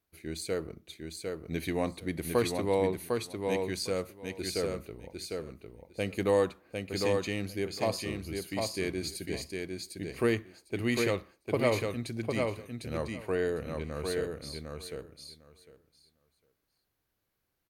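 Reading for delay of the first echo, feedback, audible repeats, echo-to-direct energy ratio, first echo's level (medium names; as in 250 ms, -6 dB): 753 ms, 15%, 2, -4.0 dB, -4.0 dB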